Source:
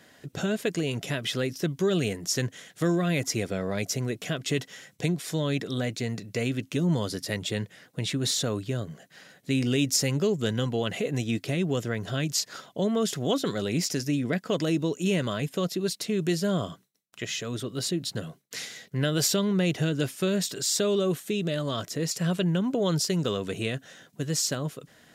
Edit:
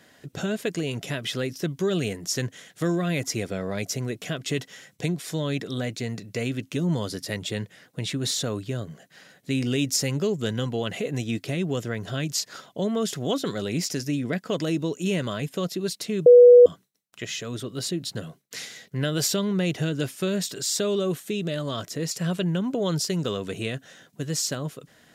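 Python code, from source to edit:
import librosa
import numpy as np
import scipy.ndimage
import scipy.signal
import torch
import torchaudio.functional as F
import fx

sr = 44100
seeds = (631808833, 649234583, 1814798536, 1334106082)

y = fx.edit(x, sr, fx.bleep(start_s=16.26, length_s=0.4, hz=488.0, db=-7.0), tone=tone)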